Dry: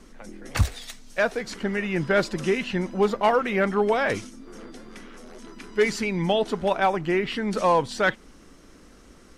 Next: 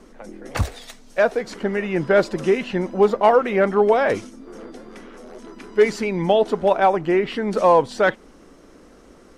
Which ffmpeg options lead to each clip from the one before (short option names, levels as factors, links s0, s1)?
-af "equalizer=f=540:w=0.52:g=9,volume=0.794"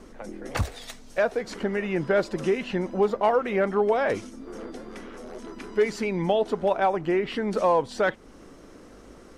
-af "acompressor=threshold=0.0316:ratio=1.5,aeval=exprs='val(0)+0.00126*(sin(2*PI*50*n/s)+sin(2*PI*2*50*n/s)/2+sin(2*PI*3*50*n/s)/3+sin(2*PI*4*50*n/s)/4+sin(2*PI*5*50*n/s)/5)':c=same"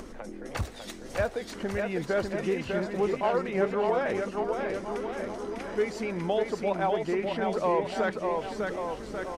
-filter_complex "[0:a]acompressor=mode=upward:threshold=0.0398:ratio=2.5,asplit=2[s0][s1];[s1]aecho=0:1:600|1140|1626|2063|2457:0.631|0.398|0.251|0.158|0.1[s2];[s0][s2]amix=inputs=2:normalize=0,volume=0.531"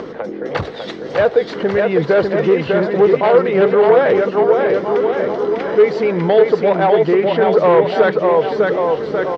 -af "aeval=exprs='0.188*sin(PI/2*1.78*val(0)/0.188)':c=same,highpass=150,equalizer=f=150:t=q:w=4:g=7,equalizer=f=230:t=q:w=4:g=-6,equalizer=f=460:t=q:w=4:g=8,equalizer=f=2500:t=q:w=4:g=-5,lowpass=f=4100:w=0.5412,lowpass=f=4100:w=1.3066,volume=1.88"